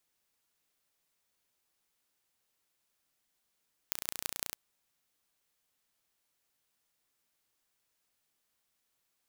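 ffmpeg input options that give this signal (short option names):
-f lavfi -i "aevalsrc='0.596*eq(mod(n,1495),0)*(0.5+0.5*eq(mod(n,7475),0))':d=0.63:s=44100"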